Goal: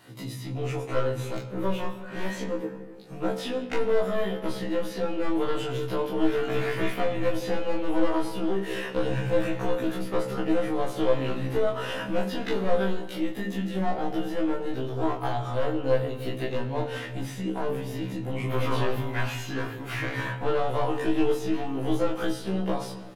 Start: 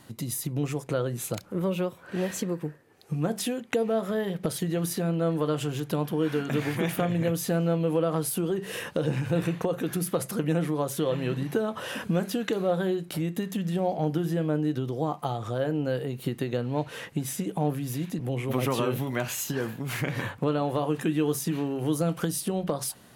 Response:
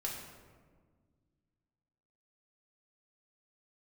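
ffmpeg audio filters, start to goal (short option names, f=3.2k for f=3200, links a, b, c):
-filter_complex "[0:a]highpass=93,bass=f=250:g=-4,treble=f=4k:g=-2,bandreject=f=50:t=h:w=6,bandreject=f=100:t=h:w=6,bandreject=f=150:t=h:w=6,bandreject=f=200:t=h:w=6,bandreject=f=250:t=h:w=6,bandreject=f=300:t=h:w=6,bandreject=f=350:t=h:w=6,bandreject=f=400:t=h:w=6,bandreject=f=450:t=h:w=6,acrossover=split=470|4800[a][b][c];[c]acompressor=threshold=-49dB:ratio=6[d];[a][b][d]amix=inputs=3:normalize=0,aeval=exprs='clip(val(0),-1,0.0316)':c=same,asplit=2[e][f];[f]adelay=25,volume=-4dB[g];[e][g]amix=inputs=2:normalize=0,asplit=2[h][i];[1:a]atrim=start_sample=2205,lowpass=6.3k[j];[i][j]afir=irnorm=-1:irlink=0,volume=-3dB[k];[h][k]amix=inputs=2:normalize=0,afftfilt=real='re*1.73*eq(mod(b,3),0)':imag='im*1.73*eq(mod(b,3),0)':win_size=2048:overlap=0.75"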